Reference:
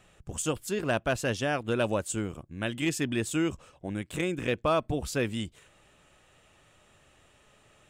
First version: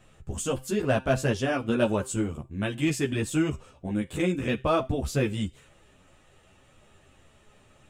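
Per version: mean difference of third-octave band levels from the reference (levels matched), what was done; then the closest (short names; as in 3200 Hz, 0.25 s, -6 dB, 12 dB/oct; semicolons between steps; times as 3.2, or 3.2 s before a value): 3.0 dB: low shelf 500 Hz +6.5 dB; resonator 130 Hz, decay 0.35 s, harmonics all, mix 50%; ensemble effect; gain +7.5 dB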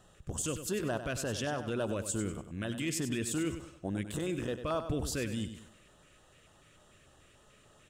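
5.5 dB: limiter -23.5 dBFS, peak gain reduction 7 dB; LFO notch square 3.4 Hz 830–2300 Hz; on a send: feedback echo 97 ms, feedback 36%, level -10 dB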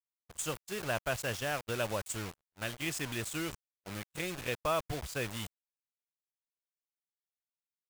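10.0 dB: requantised 6-bit, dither none; gate -34 dBFS, range -48 dB; bell 270 Hz -8.5 dB 1.5 oct; gain -4 dB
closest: first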